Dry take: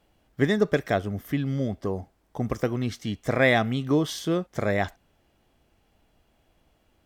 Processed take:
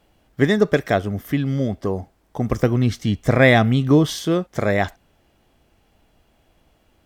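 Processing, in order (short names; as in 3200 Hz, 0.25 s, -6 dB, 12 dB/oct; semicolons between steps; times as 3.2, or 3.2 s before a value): 2.52–4.15 low shelf 180 Hz +8.5 dB; gain +5.5 dB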